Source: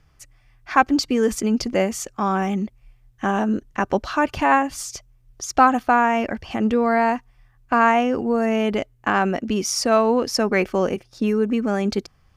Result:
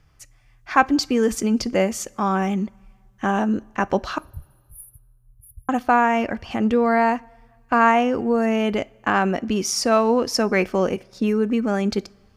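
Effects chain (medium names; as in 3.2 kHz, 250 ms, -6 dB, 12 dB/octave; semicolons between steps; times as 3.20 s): 4.18–5.69 s: brick-wall FIR band-stop 150–9600 Hz; two-slope reverb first 0.27 s, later 1.8 s, from -18 dB, DRR 17.5 dB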